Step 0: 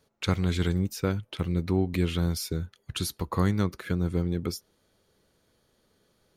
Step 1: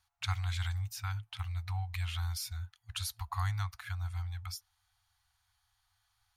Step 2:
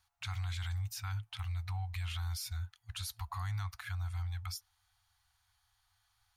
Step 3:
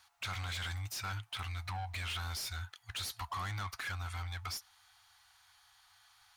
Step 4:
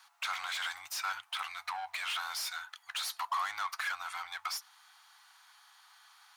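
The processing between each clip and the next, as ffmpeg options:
-af "afftfilt=real='re*(1-between(b*sr/4096,110,690))':imag='im*(1-between(b*sr/4096,110,690))':win_size=4096:overlap=0.75,volume=-5dB"
-af "alimiter=level_in=8.5dB:limit=-24dB:level=0:latency=1:release=11,volume=-8.5dB,volume=1dB"
-filter_complex "[0:a]asplit=2[a][b];[b]highpass=f=720:p=1,volume=20dB,asoftclip=type=tanh:threshold=-31dB[c];[a][c]amix=inputs=2:normalize=0,lowpass=f=6.5k:p=1,volume=-6dB,volume=-1dB"
-af "highpass=f=980:t=q:w=1.6,volume=3dB"

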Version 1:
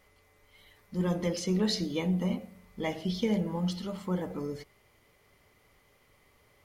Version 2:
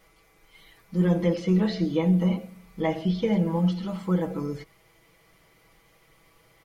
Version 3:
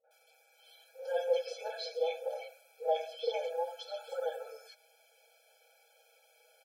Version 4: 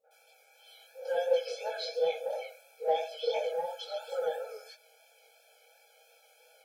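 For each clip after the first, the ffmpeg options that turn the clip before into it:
-filter_complex "[0:a]acrossover=split=3100[a][b];[b]acompressor=threshold=-59dB:ratio=4:attack=1:release=60[c];[a][c]amix=inputs=2:normalize=0,aecho=1:1:6.1:0.82,volume=3dB"
-filter_complex "[0:a]acrossover=split=400|1400[a][b][c];[b]adelay=40[d];[c]adelay=110[e];[a][d][e]amix=inputs=3:normalize=0,afftfilt=real='re*eq(mod(floor(b*sr/1024/440),2),1)':imag='im*eq(mod(floor(b*sr/1024/440),2),1)':win_size=1024:overlap=0.75"
-filter_complex "[0:a]asplit=2[a][b];[b]asoftclip=type=tanh:threshold=-32.5dB,volume=-10dB[c];[a][c]amix=inputs=2:normalize=0,flanger=delay=18:depth=4.9:speed=2.9,volume=4.5dB"

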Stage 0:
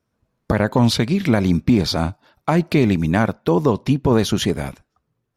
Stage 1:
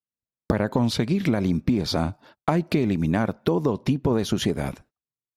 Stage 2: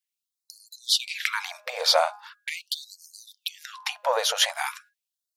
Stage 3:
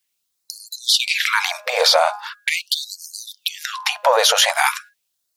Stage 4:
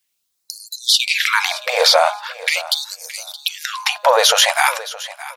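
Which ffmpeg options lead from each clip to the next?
-af "agate=range=-35dB:threshold=-49dB:ratio=16:detection=peak,equalizer=f=320:w=0.46:g=4,acompressor=threshold=-20dB:ratio=6,volume=1dB"
-af "asoftclip=type=tanh:threshold=-9.5dB,bandreject=f=206.8:t=h:w=4,bandreject=f=413.6:t=h:w=4,bandreject=f=620.4:t=h:w=4,bandreject=f=827.2:t=h:w=4,bandreject=f=1.034k:t=h:w=4,bandreject=f=1.2408k:t=h:w=4,bandreject=f=1.4476k:t=h:w=4,bandreject=f=1.6544k:t=h:w=4,afftfilt=real='re*gte(b*sr/1024,460*pow(4200/460,0.5+0.5*sin(2*PI*0.41*pts/sr)))':imag='im*gte(b*sr/1024,460*pow(4200/460,0.5+0.5*sin(2*PI*0.41*pts/sr)))':win_size=1024:overlap=0.75,volume=9dB"
-af "alimiter=level_in=17dB:limit=-1dB:release=50:level=0:latency=1,volume=-3.5dB"
-af "aecho=1:1:620|1240:0.15|0.0284,volume=2dB"

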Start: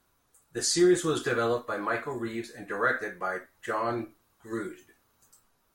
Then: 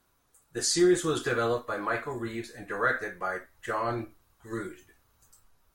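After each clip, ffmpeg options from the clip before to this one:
-af "asubboost=boost=3.5:cutoff=110"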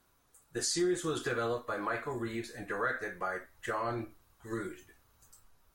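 -af "acompressor=threshold=-34dB:ratio=2"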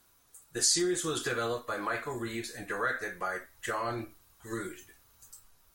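-af "highshelf=f=2.7k:g=9"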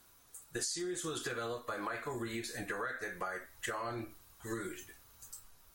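-af "acompressor=threshold=-38dB:ratio=6,volume=2dB"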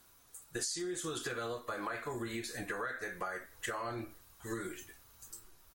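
-filter_complex "[0:a]asplit=2[a][b];[b]adelay=816.3,volume=-29dB,highshelf=f=4k:g=-18.4[c];[a][c]amix=inputs=2:normalize=0"

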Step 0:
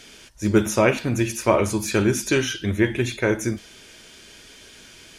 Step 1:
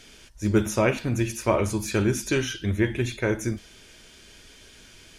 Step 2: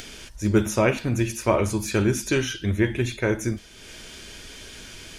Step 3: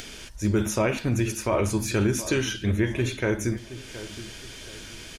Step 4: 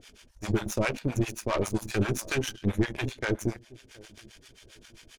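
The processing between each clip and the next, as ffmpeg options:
-af "lowshelf=f=80:g=11,volume=-4.5dB"
-af "acompressor=mode=upward:threshold=-34dB:ratio=2.5,volume=1.5dB"
-filter_complex "[0:a]alimiter=limit=-14dB:level=0:latency=1:release=40,asplit=2[a][b];[b]adelay=721,lowpass=f=1.9k:p=1,volume=-14dB,asplit=2[c][d];[d]adelay=721,lowpass=f=1.9k:p=1,volume=0.36,asplit=2[e][f];[f]adelay=721,lowpass=f=1.9k:p=1,volume=0.36[g];[a][c][e][g]amix=inputs=4:normalize=0"
-filter_complex "[0:a]aeval=exprs='0.237*(cos(1*acos(clip(val(0)/0.237,-1,1)))-cos(1*PI/2))+0.015*(cos(5*acos(clip(val(0)/0.237,-1,1)))-cos(5*PI/2))+0.0211*(cos(6*acos(clip(val(0)/0.237,-1,1)))-cos(6*PI/2))+0.0335*(cos(7*acos(clip(val(0)/0.237,-1,1)))-cos(7*PI/2))':c=same,acrossover=split=620[a][b];[a]aeval=exprs='val(0)*(1-1/2+1/2*cos(2*PI*7.5*n/s))':c=same[c];[b]aeval=exprs='val(0)*(1-1/2-1/2*cos(2*PI*7.5*n/s))':c=same[d];[c][d]amix=inputs=2:normalize=0"

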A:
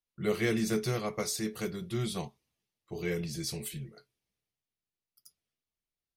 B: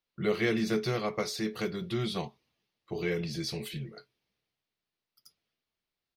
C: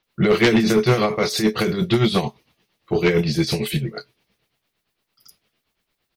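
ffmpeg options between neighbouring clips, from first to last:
-filter_complex "[0:a]lowshelf=f=110:g=-9,asplit=2[a][b];[b]acompressor=threshold=-41dB:ratio=6,volume=2dB[c];[a][c]amix=inputs=2:normalize=0,firequalizer=gain_entry='entry(4400,0);entry(7600,-14);entry(15000,-10)':delay=0.05:min_phase=1"
-filter_complex "[0:a]tremolo=f=8.8:d=0.7,acrossover=split=5500[a][b];[b]adelay=30[c];[a][c]amix=inputs=2:normalize=0,aeval=exprs='0.141*sin(PI/2*2.24*val(0)/0.141)':c=same,volume=7.5dB"

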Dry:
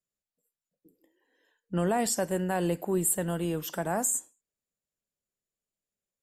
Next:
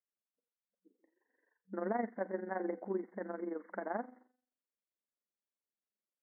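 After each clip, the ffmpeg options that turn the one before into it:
-af "bandreject=f=251.6:t=h:w=4,bandreject=f=503.2:t=h:w=4,bandreject=f=754.8:t=h:w=4,bandreject=f=1.0064k:t=h:w=4,bandreject=f=1.258k:t=h:w=4,bandreject=f=1.5096k:t=h:w=4,bandreject=f=1.7612k:t=h:w=4,bandreject=f=2.0128k:t=h:w=4,bandreject=f=2.2644k:t=h:w=4,bandreject=f=2.516k:t=h:w=4,bandreject=f=2.7676k:t=h:w=4,bandreject=f=3.0192k:t=h:w=4,bandreject=f=3.2708k:t=h:w=4,bandreject=f=3.5224k:t=h:w=4,bandreject=f=3.774k:t=h:w=4,bandreject=f=4.0256k:t=h:w=4,bandreject=f=4.2772k:t=h:w=4,bandreject=f=4.5288k:t=h:w=4,bandreject=f=4.7804k:t=h:w=4,bandreject=f=5.032k:t=h:w=4,bandreject=f=5.2836k:t=h:w=4,bandreject=f=5.5352k:t=h:w=4,bandreject=f=5.7868k:t=h:w=4,bandreject=f=6.0384k:t=h:w=4,bandreject=f=6.29k:t=h:w=4,bandreject=f=6.5416k:t=h:w=4,bandreject=f=6.7932k:t=h:w=4,bandreject=f=7.0448k:t=h:w=4,bandreject=f=7.2964k:t=h:w=4,bandreject=f=7.548k:t=h:w=4,bandreject=f=7.7996k:t=h:w=4,bandreject=f=8.0512k:t=h:w=4,bandreject=f=8.3028k:t=h:w=4,bandreject=f=8.5544k:t=h:w=4,bandreject=f=8.806k:t=h:w=4,bandreject=f=9.0576k:t=h:w=4,bandreject=f=9.3092k:t=h:w=4,bandreject=f=9.5608k:t=h:w=4,bandreject=f=9.8124k:t=h:w=4,tremolo=f=23:d=0.71,afftfilt=real='re*between(b*sr/4096,190,2200)':imag='im*between(b*sr/4096,190,2200)':win_size=4096:overlap=0.75,volume=-4.5dB"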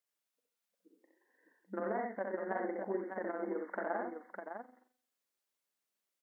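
-af "lowshelf=f=260:g=-11,acompressor=threshold=-41dB:ratio=3,aecho=1:1:65|90|605:0.668|0.282|0.501,volume=5.5dB"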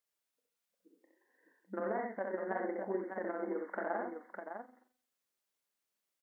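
-filter_complex "[0:a]asplit=2[a][b];[b]adelay=27,volume=-14dB[c];[a][c]amix=inputs=2:normalize=0"

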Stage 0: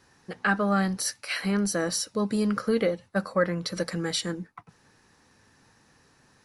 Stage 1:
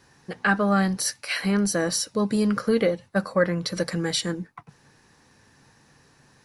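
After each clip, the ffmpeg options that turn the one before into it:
-af "equalizer=f=140:t=o:w=0.2:g=6.5,bandreject=f=1.3k:w=19,volume=3dB"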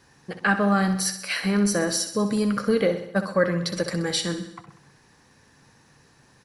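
-af "aecho=1:1:64|128|192|256|320|384|448:0.299|0.173|0.1|0.0582|0.0338|0.0196|0.0114"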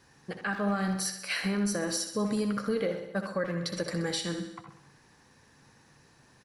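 -filter_complex "[0:a]alimiter=limit=-17.5dB:level=0:latency=1:release=335,asplit=2[a][b];[b]adelay=80,highpass=300,lowpass=3.4k,asoftclip=type=hard:threshold=-25.5dB,volume=-8dB[c];[a][c]amix=inputs=2:normalize=0,volume=-3.5dB"

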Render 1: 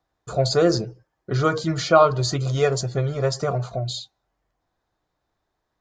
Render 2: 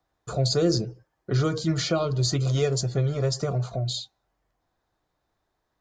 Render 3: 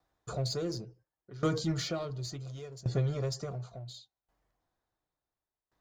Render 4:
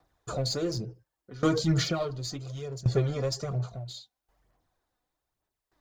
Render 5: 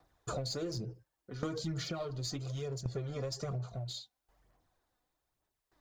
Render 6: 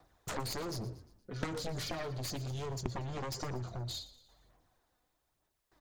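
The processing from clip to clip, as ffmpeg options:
-filter_complex "[0:a]acrossover=split=400|3000[a][b][c];[b]acompressor=threshold=-34dB:ratio=4[d];[a][d][c]amix=inputs=3:normalize=0"
-filter_complex "[0:a]asplit=2[a][b];[b]asoftclip=type=hard:threshold=-27dB,volume=-5dB[c];[a][c]amix=inputs=2:normalize=0,aeval=exprs='val(0)*pow(10,-21*if(lt(mod(0.7*n/s,1),2*abs(0.7)/1000),1-mod(0.7*n/s,1)/(2*abs(0.7)/1000),(mod(0.7*n/s,1)-2*abs(0.7)/1000)/(1-2*abs(0.7)/1000))/20)':c=same,volume=-5dB"
-af "aphaser=in_gain=1:out_gain=1:delay=4.1:decay=0.46:speed=1.1:type=sinusoidal,volume=4.5dB"
-af "acompressor=threshold=-34dB:ratio=12"
-filter_complex "[0:a]aeval=exprs='0.0891*(cos(1*acos(clip(val(0)/0.0891,-1,1)))-cos(1*PI/2))+0.0178*(cos(4*acos(clip(val(0)/0.0891,-1,1)))-cos(4*PI/2))+0.0355*(cos(7*acos(clip(val(0)/0.0891,-1,1)))-cos(7*PI/2))':c=same,asplit=5[a][b][c][d][e];[b]adelay=117,afreqshift=-38,volume=-16.5dB[f];[c]adelay=234,afreqshift=-76,volume=-22.9dB[g];[d]adelay=351,afreqshift=-114,volume=-29.3dB[h];[e]adelay=468,afreqshift=-152,volume=-35.6dB[i];[a][f][g][h][i]amix=inputs=5:normalize=0,volume=-1.5dB"

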